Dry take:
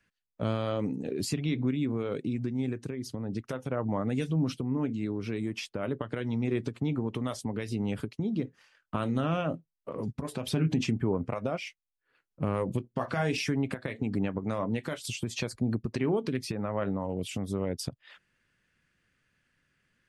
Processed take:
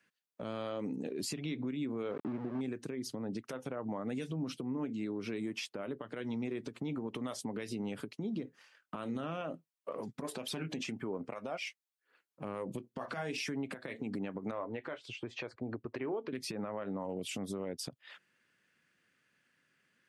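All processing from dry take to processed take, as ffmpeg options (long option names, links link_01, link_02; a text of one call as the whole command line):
ffmpeg -i in.wav -filter_complex "[0:a]asettb=1/sr,asplit=3[link_01][link_02][link_03];[link_01]atrim=end=2.114[link_04];[link_02]atrim=start=2.11:end=2.61,asetpts=PTS-STARTPTS,afade=type=in:duration=0.004:curve=qsin,afade=type=out:start_time=0.496:duration=0.004:curve=qsin,aeval=exprs='val(0)*gte(abs(val(0)),0.0178)':channel_layout=same,lowpass=1300[link_05];[link_03]atrim=start=2.606[link_06];[link_04][link_05]acrossfade=duration=0.004:curve1=hsin:curve2=qsin[link_07];[link_07][link_06]acrossfade=duration=0.004:curve1=qsin:curve2=hsin,asettb=1/sr,asplit=3[link_08][link_09][link_10];[link_08]atrim=end=9.414[link_11];[link_09]atrim=start=9.41:end=12.45,asetpts=PTS-STARTPTS,afade=type=in:duration=0.004:curve=qsin,afade=type=out:start_time=3.036:duration=0.004:curve=qsin,lowshelf=frequency=250:gain=-10.5,aphaser=in_gain=1:out_gain=1:delay=1.9:decay=0.32:speed=1.1:type=triangular[link_12];[link_10]atrim=start=12.446[link_13];[link_11][link_12]acrossfade=duration=0.004:curve1=hsin:curve2=qsin[link_14];[link_14][link_13]acrossfade=duration=0.004:curve1=qsin:curve2=hsin,asettb=1/sr,asplit=3[link_15][link_16][link_17];[link_15]atrim=end=14.514[link_18];[link_16]atrim=start=14.51:end=16.33,asetpts=PTS-STARTPTS,afade=type=in:duration=0.004:curve=qsin,afade=type=out:start_time=1.816:duration=0.004:curve=qsin,lowpass=2100,equalizer=frequency=190:width_type=o:width=0.7:gain=-15[link_19];[link_17]atrim=start=16.326[link_20];[link_18][link_19]acrossfade=duration=0.004:curve1=hsin:curve2=qsin[link_21];[link_21][link_20]acrossfade=duration=0.004:curve1=qsin:curve2=hsin,highpass=200,acompressor=threshold=-33dB:ratio=6,alimiter=level_in=4.5dB:limit=-24dB:level=0:latency=1:release=79,volume=-4.5dB" out.wav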